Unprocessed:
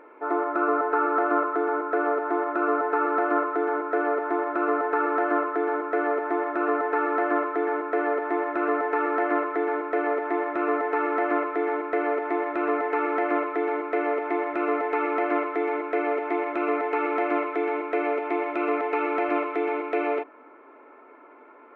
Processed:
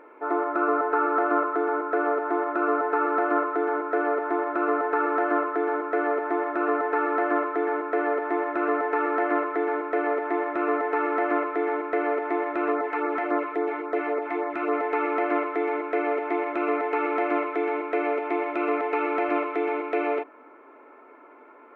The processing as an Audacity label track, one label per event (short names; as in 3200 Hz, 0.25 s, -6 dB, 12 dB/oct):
12.720000	14.730000	LFO notch sine 3.6 Hz 400–3200 Hz